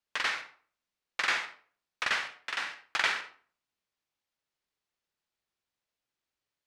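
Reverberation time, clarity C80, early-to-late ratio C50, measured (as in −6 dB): 0.45 s, 14.0 dB, 9.5 dB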